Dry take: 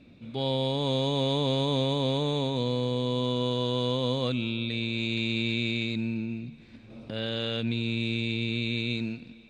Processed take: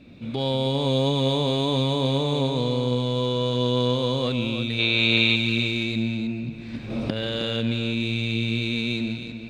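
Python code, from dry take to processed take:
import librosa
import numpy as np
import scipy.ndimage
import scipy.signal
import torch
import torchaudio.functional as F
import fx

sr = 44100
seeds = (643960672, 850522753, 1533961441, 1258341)

p1 = fx.recorder_agc(x, sr, target_db=-23.5, rise_db_per_s=19.0, max_gain_db=30)
p2 = np.clip(p1, -10.0 ** (-31.0 / 20.0), 10.0 ** (-31.0 / 20.0))
p3 = p1 + F.gain(torch.from_numpy(p2), -12.0).numpy()
p4 = fx.spec_box(p3, sr, start_s=4.79, length_s=0.57, low_hz=360.0, high_hz=4500.0, gain_db=9)
p5 = p4 + 10.0 ** (-9.0 / 20.0) * np.pad(p4, (int(315 * sr / 1000.0), 0))[:len(p4)]
y = F.gain(torch.from_numpy(p5), 2.5).numpy()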